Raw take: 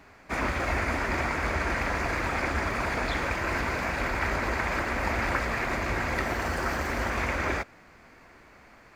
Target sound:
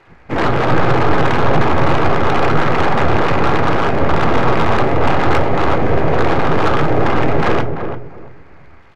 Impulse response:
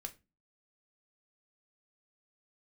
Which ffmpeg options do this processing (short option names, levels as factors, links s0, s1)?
-filter_complex "[0:a]aemphasis=mode=reproduction:type=riaa,afwtdn=0.0562,bandreject=f=60:t=h:w=6,bandreject=f=120:t=h:w=6,bandreject=f=180:t=h:w=6,bandreject=f=240:t=h:w=6,bandreject=f=300:t=h:w=6,bandreject=f=360:t=h:w=6,bandreject=f=420:t=h:w=6,aeval=exprs='abs(val(0))':c=same,asplit=2[s0][s1];[s1]highpass=f=720:p=1,volume=31.6,asoftclip=type=tanh:threshold=0.473[s2];[s0][s2]amix=inputs=2:normalize=0,lowpass=f=5700:p=1,volume=0.501,asplit=2[s3][s4];[s4]adelay=338,lowpass=f=1000:p=1,volume=0.501,asplit=2[s5][s6];[s6]adelay=338,lowpass=f=1000:p=1,volume=0.24,asplit=2[s7][s8];[s8]adelay=338,lowpass=f=1000:p=1,volume=0.24[s9];[s3][s5][s7][s9]amix=inputs=4:normalize=0,asplit=2[s10][s11];[1:a]atrim=start_sample=2205[s12];[s11][s12]afir=irnorm=-1:irlink=0,volume=1.68[s13];[s10][s13]amix=inputs=2:normalize=0,volume=0.501"